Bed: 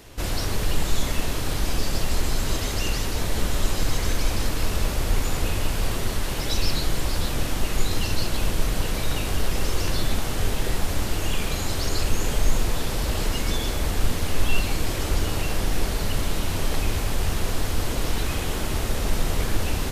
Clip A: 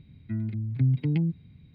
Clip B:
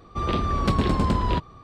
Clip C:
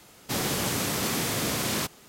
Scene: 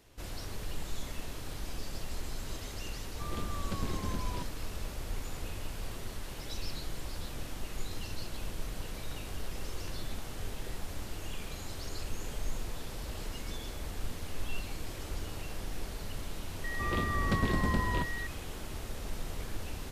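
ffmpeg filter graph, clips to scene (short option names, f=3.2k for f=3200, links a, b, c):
-filter_complex "[2:a]asplit=2[a][b];[0:a]volume=-15dB[c];[b]aeval=exprs='val(0)+0.0355*sin(2*PI*1900*n/s)':c=same[d];[a]atrim=end=1.63,asetpts=PTS-STARTPTS,volume=-16dB,afade=t=in:d=0.004:c=hsin,afade=t=out:st=1.626:d=0.004:c=hsin,adelay=3040[e];[d]atrim=end=1.63,asetpts=PTS-STARTPTS,volume=-8.5dB,afade=t=in:d=0.004:c=hsin,afade=t=out:st=1.626:d=0.004:c=hsin,adelay=16640[f];[c][e][f]amix=inputs=3:normalize=0"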